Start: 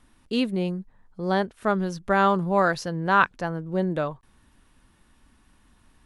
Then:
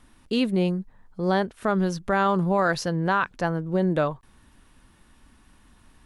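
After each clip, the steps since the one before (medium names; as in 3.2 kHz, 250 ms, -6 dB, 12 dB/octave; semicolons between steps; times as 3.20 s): peak limiter -16.5 dBFS, peak gain reduction 10.5 dB; trim +3.5 dB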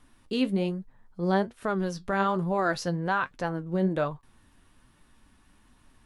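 flange 1.2 Hz, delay 6.5 ms, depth 5.2 ms, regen +59%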